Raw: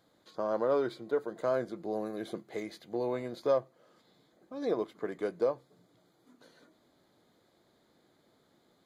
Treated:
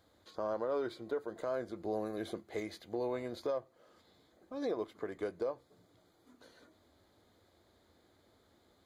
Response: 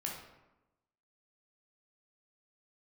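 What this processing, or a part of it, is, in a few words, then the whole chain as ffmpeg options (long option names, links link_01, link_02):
car stereo with a boomy subwoofer: -af "lowshelf=frequency=110:width_type=q:width=3:gain=7,alimiter=level_in=2.5dB:limit=-24dB:level=0:latency=1:release=288,volume=-2.5dB"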